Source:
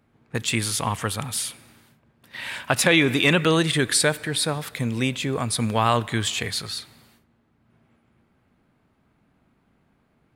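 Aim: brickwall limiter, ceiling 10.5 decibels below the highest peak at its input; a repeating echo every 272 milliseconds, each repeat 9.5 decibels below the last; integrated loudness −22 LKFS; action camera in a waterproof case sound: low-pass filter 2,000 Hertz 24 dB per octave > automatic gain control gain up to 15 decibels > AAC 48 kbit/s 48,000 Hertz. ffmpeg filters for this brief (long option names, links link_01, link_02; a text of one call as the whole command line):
ffmpeg -i in.wav -af "alimiter=limit=-13dB:level=0:latency=1,lowpass=frequency=2000:width=0.5412,lowpass=frequency=2000:width=1.3066,aecho=1:1:272|544|816|1088:0.335|0.111|0.0365|0.012,dynaudnorm=maxgain=15dB,volume=5.5dB" -ar 48000 -c:a aac -b:a 48k out.aac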